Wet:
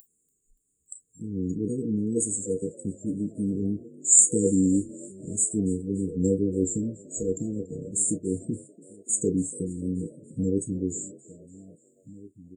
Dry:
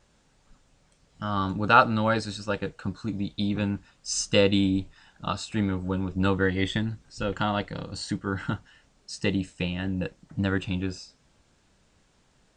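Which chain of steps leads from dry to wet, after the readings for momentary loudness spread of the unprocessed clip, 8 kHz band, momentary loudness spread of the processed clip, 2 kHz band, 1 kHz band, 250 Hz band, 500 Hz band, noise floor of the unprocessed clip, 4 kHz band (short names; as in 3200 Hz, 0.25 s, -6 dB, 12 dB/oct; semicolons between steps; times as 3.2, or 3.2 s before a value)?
13 LU, +15.0 dB, 14 LU, under -40 dB, under -40 dB, +1.5 dB, -1.0 dB, -65 dBFS, under -40 dB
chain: doubler 31 ms -13.5 dB; outdoor echo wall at 290 m, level -20 dB; vibrato 1.9 Hz 83 cents; upward compressor, threshold -40 dBFS; spectral noise reduction 28 dB; RIAA curve recording; FFT band-reject 490–6700 Hz; on a send: frequency-shifting echo 0.287 s, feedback 58%, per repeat +49 Hz, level -22 dB; on the sum: gain +8 dB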